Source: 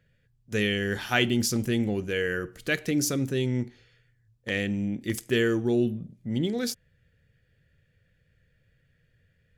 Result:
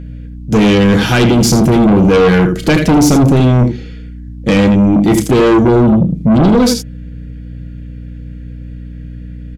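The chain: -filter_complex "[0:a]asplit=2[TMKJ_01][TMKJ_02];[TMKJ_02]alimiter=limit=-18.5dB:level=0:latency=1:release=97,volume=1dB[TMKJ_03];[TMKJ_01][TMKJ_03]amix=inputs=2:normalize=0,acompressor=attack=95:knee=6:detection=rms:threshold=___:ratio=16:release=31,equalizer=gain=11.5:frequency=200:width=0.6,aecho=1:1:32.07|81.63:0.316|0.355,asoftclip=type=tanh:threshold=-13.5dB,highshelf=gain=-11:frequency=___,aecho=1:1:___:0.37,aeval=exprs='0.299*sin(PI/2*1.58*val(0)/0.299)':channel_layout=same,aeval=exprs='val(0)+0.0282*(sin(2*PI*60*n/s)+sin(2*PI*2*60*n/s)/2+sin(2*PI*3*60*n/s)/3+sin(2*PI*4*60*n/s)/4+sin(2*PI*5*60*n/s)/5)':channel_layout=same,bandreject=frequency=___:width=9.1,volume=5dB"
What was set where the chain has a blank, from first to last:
-22dB, 11000, 6.3, 1800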